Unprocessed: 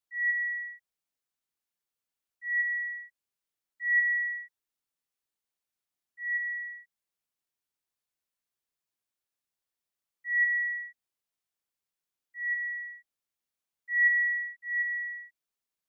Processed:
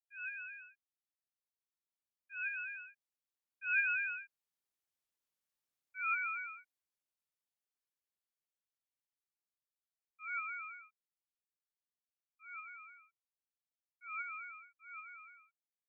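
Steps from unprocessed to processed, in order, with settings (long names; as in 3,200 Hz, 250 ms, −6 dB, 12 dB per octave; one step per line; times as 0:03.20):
source passing by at 0:05.43, 18 m/s, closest 24 metres
ring modulator whose carrier an LFO sweeps 480 Hz, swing 20%, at 4.6 Hz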